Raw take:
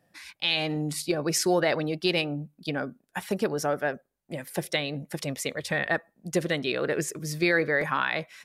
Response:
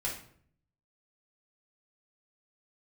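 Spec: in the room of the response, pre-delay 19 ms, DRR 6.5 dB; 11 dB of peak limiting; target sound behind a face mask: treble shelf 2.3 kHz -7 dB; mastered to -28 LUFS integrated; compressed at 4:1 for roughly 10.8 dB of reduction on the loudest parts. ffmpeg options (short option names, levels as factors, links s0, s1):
-filter_complex "[0:a]acompressor=threshold=0.0224:ratio=4,alimiter=level_in=1.5:limit=0.0631:level=0:latency=1,volume=0.668,asplit=2[s0][s1];[1:a]atrim=start_sample=2205,adelay=19[s2];[s1][s2]afir=irnorm=-1:irlink=0,volume=0.316[s3];[s0][s3]amix=inputs=2:normalize=0,highshelf=f=2300:g=-7,volume=3.55"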